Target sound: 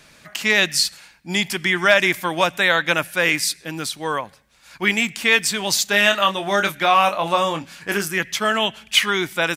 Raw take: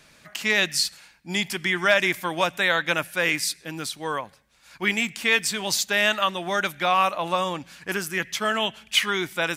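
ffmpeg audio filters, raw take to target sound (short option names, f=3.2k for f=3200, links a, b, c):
-filter_complex "[0:a]asplit=3[a][b][c];[a]afade=t=out:st=5.85:d=0.02[d];[b]asplit=2[e][f];[f]adelay=25,volume=-7dB[g];[e][g]amix=inputs=2:normalize=0,afade=t=in:st=5.85:d=0.02,afade=t=out:st=8.12:d=0.02[h];[c]afade=t=in:st=8.12:d=0.02[i];[d][h][i]amix=inputs=3:normalize=0,volume=4.5dB"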